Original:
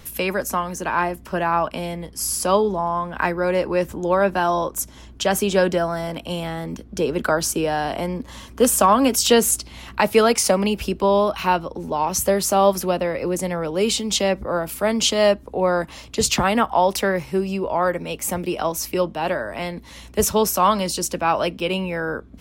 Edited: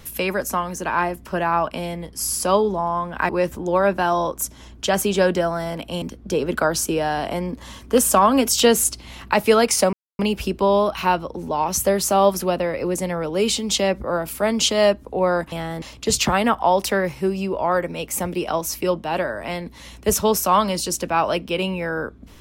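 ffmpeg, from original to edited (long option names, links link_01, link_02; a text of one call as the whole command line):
ffmpeg -i in.wav -filter_complex "[0:a]asplit=6[link_01][link_02][link_03][link_04][link_05][link_06];[link_01]atrim=end=3.292[link_07];[link_02]atrim=start=3.658:end=6.392[link_08];[link_03]atrim=start=6.688:end=10.6,asetpts=PTS-STARTPTS,afade=type=out:start_time=3.908:duration=0.004:curve=hsin,apad=pad_dur=0.26[link_09];[link_04]atrim=start=10.6:end=15.932,asetpts=PTS-STARTPTS,afade=type=in:duration=0.004:curve=hsin[link_10];[link_05]atrim=start=6.388:end=6.692[link_11];[link_06]atrim=start=15.928[link_12];[link_07][link_08]acrossfade=duration=0.004:curve1=hsin:curve2=hsin[link_13];[link_09][link_10]concat=n=2:v=0:a=1[link_14];[link_13][link_14]acrossfade=duration=0.004:curve1=hsin:curve2=hsin[link_15];[link_15][link_11]acrossfade=duration=0.004:curve1=hsin:curve2=hsin[link_16];[link_16][link_12]acrossfade=duration=0.004:curve1=hsin:curve2=hsin" out.wav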